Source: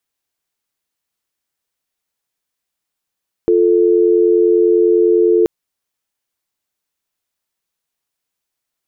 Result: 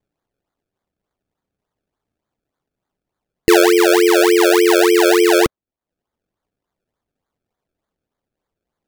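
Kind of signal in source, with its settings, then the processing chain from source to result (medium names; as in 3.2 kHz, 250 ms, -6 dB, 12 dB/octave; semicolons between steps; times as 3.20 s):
call progress tone dial tone, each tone -11.5 dBFS 1.98 s
reverb removal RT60 0.84 s; bass shelf 250 Hz +10.5 dB; decimation with a swept rate 31×, swing 100% 3.4 Hz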